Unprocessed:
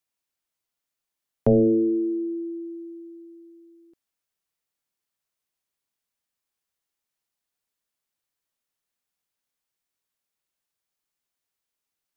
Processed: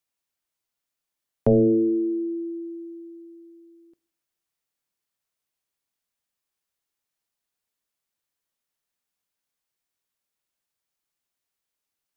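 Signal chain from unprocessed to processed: two-slope reverb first 0.66 s, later 2 s, from -23 dB, DRR 18 dB

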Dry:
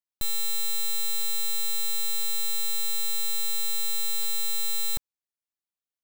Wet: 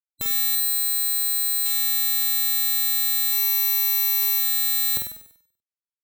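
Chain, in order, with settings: 0.55–1.66 s: peaking EQ 4.4 kHz -9.5 dB 2.5 oct; spectral gate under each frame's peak -15 dB weak; 3.32–4.39 s: rippled EQ curve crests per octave 0.78, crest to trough 7 dB; flutter echo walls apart 8.3 m, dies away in 0.64 s; trim +4.5 dB

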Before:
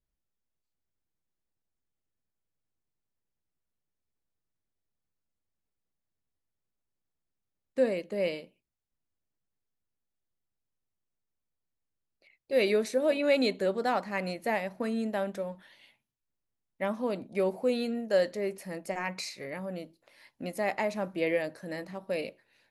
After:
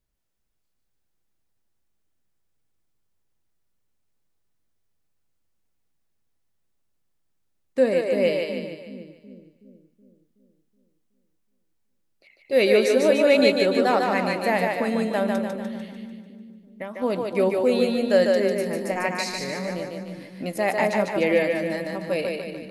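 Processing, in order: 15.35–17.02 s: compression 5:1, threshold -39 dBFS, peak gain reduction 12 dB; two-band feedback delay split 310 Hz, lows 373 ms, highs 148 ms, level -3 dB; trim +6.5 dB

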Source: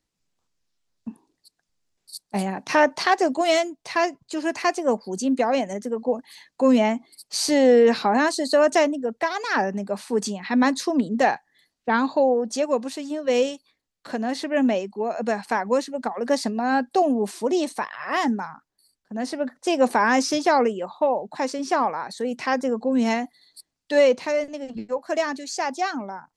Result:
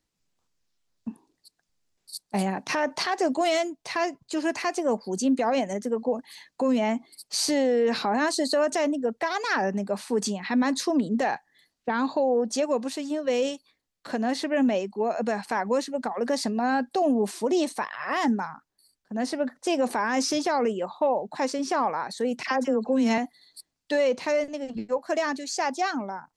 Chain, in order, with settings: 22.43–23.18 s: phase dispersion lows, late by 45 ms, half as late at 1.4 kHz; peak limiter -16 dBFS, peak gain reduction 10 dB

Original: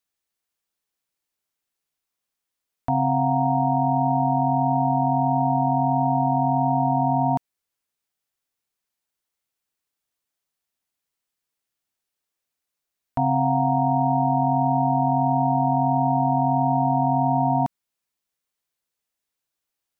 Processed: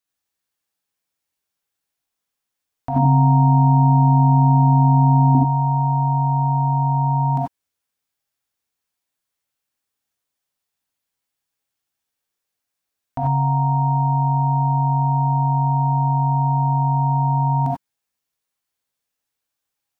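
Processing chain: 2.96–5.35 s: peaking EQ 270 Hz +14 dB 1.5 oct; gated-style reverb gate 110 ms rising, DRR -2.5 dB; trim -2 dB

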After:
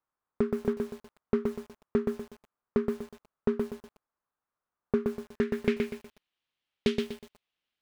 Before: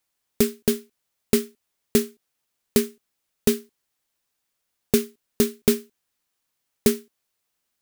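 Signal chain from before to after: low-pass sweep 1.2 kHz -> 3.2 kHz, 4.98–6.12 s; bit-crushed delay 122 ms, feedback 35%, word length 7-bit, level -4 dB; trim -7.5 dB

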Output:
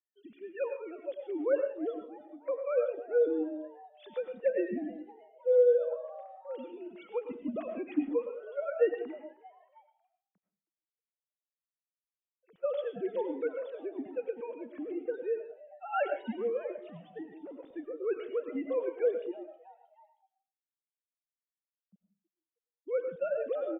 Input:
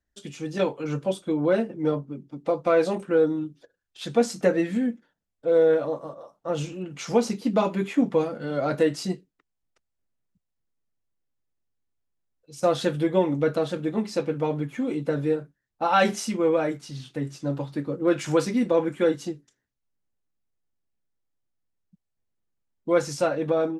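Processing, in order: formants replaced by sine waves; rotary cabinet horn 1.1 Hz; frequency-shifting echo 315 ms, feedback 48%, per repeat +140 Hz, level -21.5 dB; on a send at -6 dB: reverberation RT60 0.35 s, pre-delay 65 ms; on the sum: trim -7.5 dB

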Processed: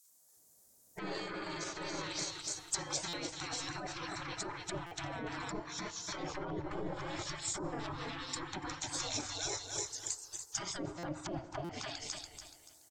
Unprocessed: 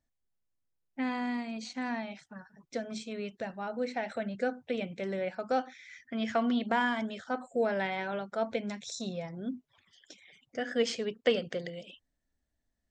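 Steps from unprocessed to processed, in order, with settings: feedback delay 287 ms, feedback 34%, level -6 dB; in parallel at -5.5 dB: saturation -28 dBFS, distortion -10 dB; on the sum: peaking EQ 380 Hz +12 dB 1.8 oct; spectral gate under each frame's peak -30 dB weak; low-pass that closes with the level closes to 600 Hz, closed at -38 dBFS; on a send at -18 dB: reverberation RT60 3.4 s, pre-delay 3 ms; on the sum: peak limiter -39.5 dBFS, peak gain reduction 9 dB; compressor with a negative ratio -51 dBFS, ratio -1; FFT filter 360 Hz 0 dB, 2.8 kHz -11 dB, 6.9 kHz +13 dB; buffer glitch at 3.08/4.86/10.98/11.64 s, samples 256, times 8; trim +15 dB

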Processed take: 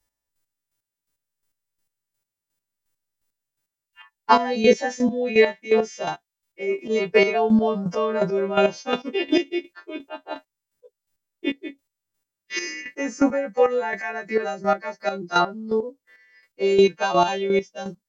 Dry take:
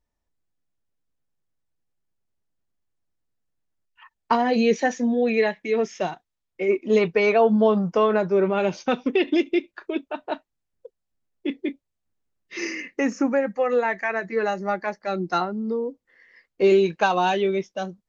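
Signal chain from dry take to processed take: partials quantised in pitch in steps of 2 st; dynamic bell 570 Hz, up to +3 dB, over -28 dBFS, Q 0.88; square tremolo 2.8 Hz, depth 65%, duty 25%; trim +3.5 dB

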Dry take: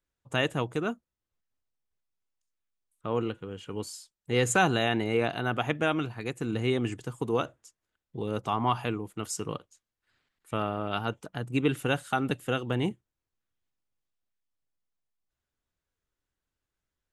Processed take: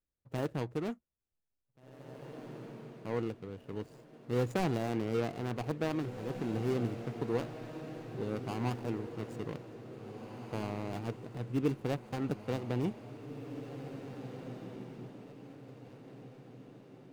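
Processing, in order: median filter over 41 samples; echo that smears into a reverb 1941 ms, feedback 43%, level -9 dB; trim -4 dB

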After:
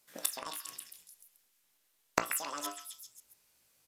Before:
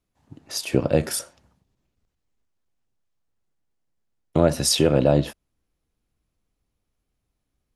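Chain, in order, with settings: tilt EQ +4.5 dB/octave; de-hum 50.29 Hz, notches 15; in parallel at +2.5 dB: peak limiter -13.5 dBFS, peak gain reduction 17 dB; on the sum: inverted gate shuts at -8 dBFS, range -26 dB; repeats whose band climbs or falls 268 ms, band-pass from 1.1 kHz, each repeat 0.7 oct, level -3 dB; on a send at -9 dB: reverberation, pre-delay 34 ms; on the sum: resampled via 16 kHz; speed mistake 7.5 ips tape played at 15 ips; trim +2 dB

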